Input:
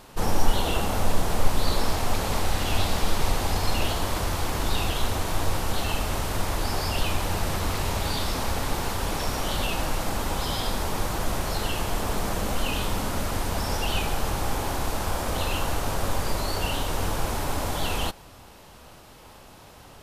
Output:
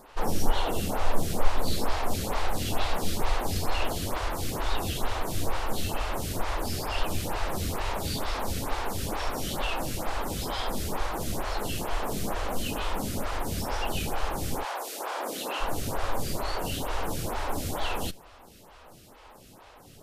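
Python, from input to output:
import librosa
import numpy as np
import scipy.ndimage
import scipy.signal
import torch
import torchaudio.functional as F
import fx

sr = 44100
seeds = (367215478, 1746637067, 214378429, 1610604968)

y = fx.highpass(x, sr, hz=fx.line((14.63, 550.0), (15.6, 190.0)), slope=24, at=(14.63, 15.6), fade=0.02)
y = fx.stagger_phaser(y, sr, hz=2.2)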